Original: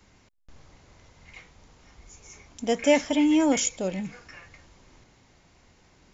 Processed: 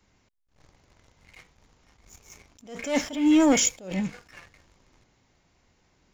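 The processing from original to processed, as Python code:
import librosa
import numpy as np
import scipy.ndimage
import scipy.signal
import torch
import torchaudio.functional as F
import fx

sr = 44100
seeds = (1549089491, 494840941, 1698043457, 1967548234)

y = fx.leveller(x, sr, passes=2)
y = fx.attack_slew(y, sr, db_per_s=120.0)
y = y * librosa.db_to_amplitude(-3.0)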